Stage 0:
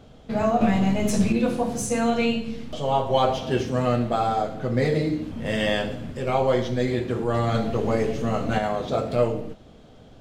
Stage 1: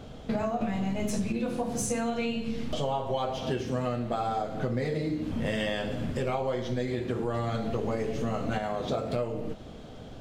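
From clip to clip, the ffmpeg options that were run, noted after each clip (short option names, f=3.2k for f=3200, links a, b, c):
-af "acompressor=threshold=-31dB:ratio=10,volume=4.5dB"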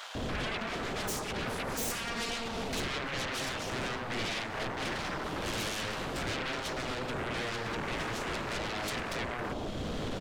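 -filter_complex "[0:a]alimiter=level_in=5dB:limit=-24dB:level=0:latency=1:release=459,volume=-5dB,aeval=exprs='0.0355*sin(PI/2*5.01*val(0)/0.0355)':c=same,acrossover=split=890[a][b];[a]adelay=150[c];[c][b]amix=inputs=2:normalize=0,volume=-2.5dB"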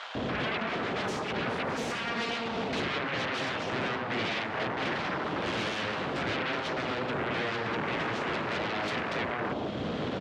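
-af "highpass=120,lowpass=3.4k,volume=4.5dB"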